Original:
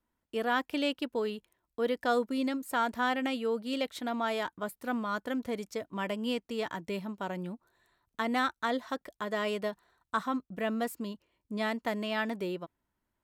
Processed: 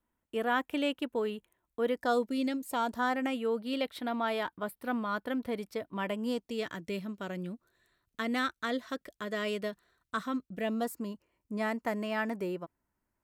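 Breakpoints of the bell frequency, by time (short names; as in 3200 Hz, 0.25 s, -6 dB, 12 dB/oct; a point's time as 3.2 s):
bell -12 dB 0.52 oct
1.89 s 4800 Hz
2.37 s 870 Hz
3.61 s 6700 Hz
6.06 s 6700 Hz
6.63 s 870 Hz
10.53 s 870 Hz
11 s 3600 Hz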